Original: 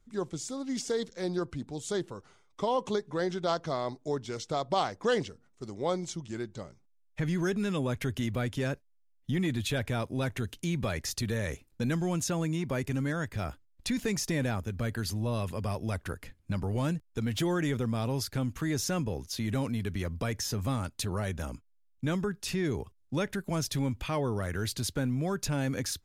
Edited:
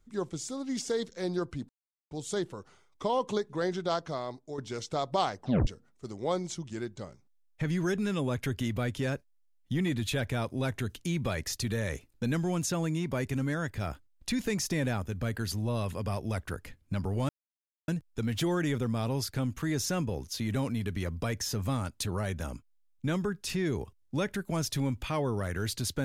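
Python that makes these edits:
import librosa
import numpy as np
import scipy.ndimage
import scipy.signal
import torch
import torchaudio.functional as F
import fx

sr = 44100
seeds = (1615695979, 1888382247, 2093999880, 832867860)

y = fx.edit(x, sr, fx.insert_silence(at_s=1.69, length_s=0.42),
    fx.fade_out_to(start_s=3.39, length_s=0.77, floor_db=-8.5),
    fx.tape_stop(start_s=4.97, length_s=0.28),
    fx.insert_silence(at_s=16.87, length_s=0.59), tone=tone)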